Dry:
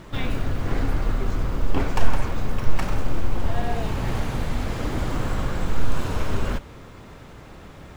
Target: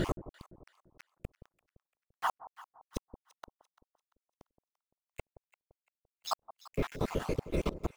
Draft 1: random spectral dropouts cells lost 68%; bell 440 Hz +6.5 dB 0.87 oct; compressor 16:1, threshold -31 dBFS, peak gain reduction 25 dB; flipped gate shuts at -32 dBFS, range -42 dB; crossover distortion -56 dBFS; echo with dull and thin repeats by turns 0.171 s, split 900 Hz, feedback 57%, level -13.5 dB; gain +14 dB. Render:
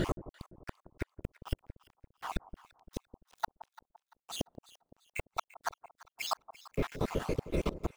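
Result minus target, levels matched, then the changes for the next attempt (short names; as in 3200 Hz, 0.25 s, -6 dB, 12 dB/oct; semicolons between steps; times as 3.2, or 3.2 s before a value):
compressor: peak gain reduction +8 dB
change: compressor 16:1, threshold -22.5 dBFS, peak gain reduction 17 dB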